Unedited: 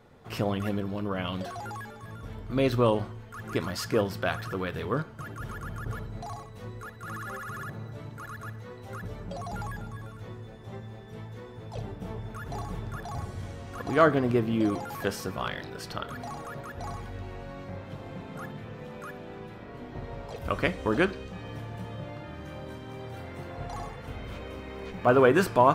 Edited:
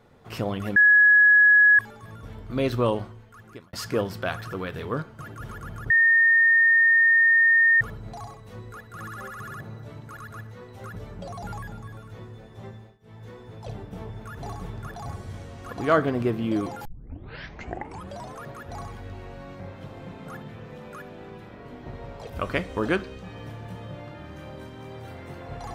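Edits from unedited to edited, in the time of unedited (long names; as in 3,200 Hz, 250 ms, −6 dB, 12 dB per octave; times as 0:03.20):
0:00.76–0:01.79: beep over 1,680 Hz −12 dBFS
0:02.91–0:03.73: fade out
0:05.90: insert tone 1,830 Hz −14.5 dBFS 1.91 s
0:10.82–0:11.35: duck −21 dB, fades 0.26 s
0:14.94: tape start 1.58 s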